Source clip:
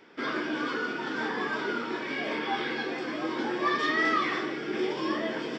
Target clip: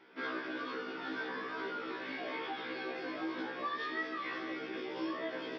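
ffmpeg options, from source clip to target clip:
-af "lowpass=f=4.8k:w=0.5412,lowpass=f=4.8k:w=1.3066,lowshelf=f=130:g=-9,acompressor=threshold=-31dB:ratio=6,afftfilt=real='re*1.73*eq(mod(b,3),0)':imag='im*1.73*eq(mod(b,3),0)':win_size=2048:overlap=0.75,volume=-2dB"

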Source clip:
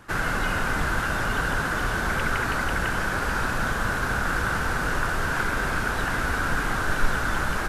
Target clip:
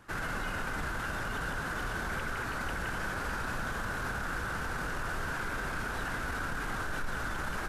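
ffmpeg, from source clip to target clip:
-af "alimiter=limit=-19dB:level=0:latency=1:release=18,volume=-7.5dB"

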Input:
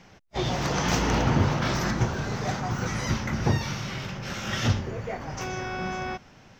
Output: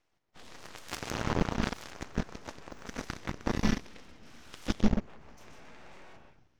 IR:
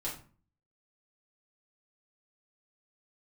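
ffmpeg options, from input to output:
-filter_complex "[0:a]asplit=2[a][b];[b]asubboost=boost=4.5:cutoff=160[c];[1:a]atrim=start_sample=2205,adelay=128[d];[c][d]afir=irnorm=-1:irlink=0,volume=-7.5dB[e];[a][e]amix=inputs=2:normalize=0,aeval=exprs='abs(val(0))':c=same,aeval=exprs='0.531*(cos(1*acos(clip(val(0)/0.531,-1,1)))-cos(1*PI/2))+0.0188*(cos(4*acos(clip(val(0)/0.531,-1,1)))-cos(4*PI/2))+0.0841*(cos(7*acos(clip(val(0)/0.531,-1,1)))-cos(7*PI/2))+0.0237*(cos(8*acos(clip(val(0)/0.531,-1,1)))-cos(8*PI/2))':c=same,volume=-5.5dB"

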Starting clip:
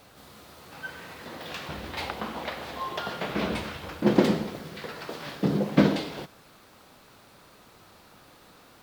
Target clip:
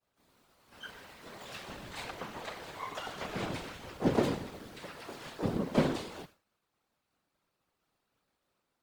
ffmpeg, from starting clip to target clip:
-filter_complex "[0:a]agate=range=-33dB:threshold=-41dB:ratio=3:detection=peak,asplit=2[a][b];[b]asetrate=88200,aresample=44100,atempo=0.5,volume=-7dB[c];[a][c]amix=inputs=2:normalize=0,afftfilt=real='hypot(re,im)*cos(2*PI*random(0))':imag='hypot(re,im)*sin(2*PI*random(1))':win_size=512:overlap=0.75,volume=-2.5dB"

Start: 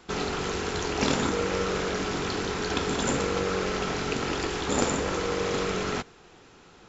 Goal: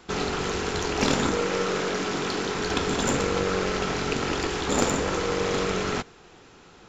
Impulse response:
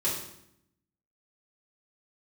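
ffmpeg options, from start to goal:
-filter_complex "[0:a]asettb=1/sr,asplit=3[a][b][c];[a]atrim=end=1.374[d];[b]atrim=start=1.37:end=2.56,asetpts=PTS-STARTPTS,afade=t=in:d=0.004:c=qsin,afade=t=out:st=1.186:d=0.004:c=qsin,highpass=140[e];[c]atrim=start=2.556[f];[d][e]acrossfade=d=0.004:c1=hsin:c2=qsin[g];[g][f]acrossfade=d=0.004:c1=qsin:c2=hsin,aeval=exprs='0.501*(cos(1*acos(clip(val(0)/0.501,-1,1)))-cos(1*PI/2))+0.0178*(cos(8*acos(clip(val(0)/0.501,-1,1)))-cos(8*PI/2))':c=same,volume=2dB"

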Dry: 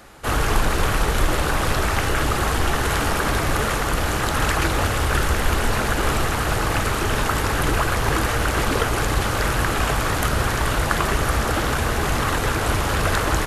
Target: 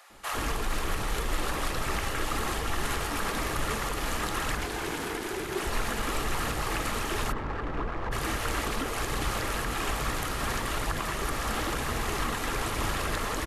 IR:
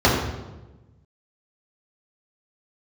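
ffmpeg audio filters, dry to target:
-filter_complex "[0:a]equalizer=f=86:w=0.8:g=-7,bandreject=f=1.5k:w=12,alimiter=limit=-14dB:level=0:latency=1:release=156,asettb=1/sr,asplit=3[a][b][c];[a]atrim=end=4.554[d];[b]atrim=start=4.55:end=5.57,asetpts=PTS-STARTPTS,afade=t=in:d=0.004:c=qsin,afade=t=out:st=1.016:d=0.004:c=qsin,aeval=exprs='val(0)*sin(2*PI*380*n/s)':c=same[e];[c]atrim=start=5.566[f];[d][e]acrossfade=d=0.004:c1=hsin:c2=qsin[g];[g][f]acrossfade=d=0.004:c1=qsin:c2=hsin,aphaser=in_gain=1:out_gain=1:delay=4.8:decay=0.21:speed=1.1:type=triangular,asplit=3[h][i][j];[h]afade=t=out:st=7.31:d=0.02[k];[i]adynamicsmooth=sensitivity=0.5:basefreq=1.2k,afade=t=in:st=7.31:d=0.02,afade=t=out:st=8.11:d=0.02[l];[j]afade=t=in:st=8.11:d=0.02[m];[k][l][m]amix=inputs=3:normalize=0,acrossover=split=620[n][o];[n]adelay=100[p];[p][o]amix=inputs=2:normalize=0,volume=-5.5dB"

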